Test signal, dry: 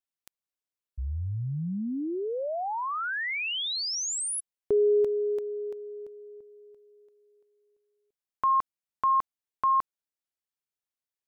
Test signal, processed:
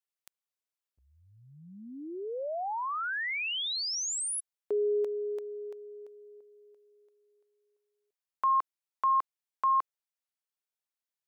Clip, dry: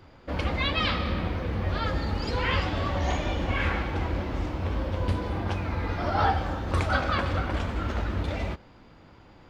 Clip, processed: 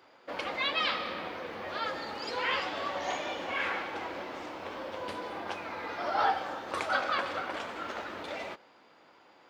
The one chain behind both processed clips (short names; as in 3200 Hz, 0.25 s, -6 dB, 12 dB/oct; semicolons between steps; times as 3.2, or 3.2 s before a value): HPF 460 Hz 12 dB/oct; gain -2 dB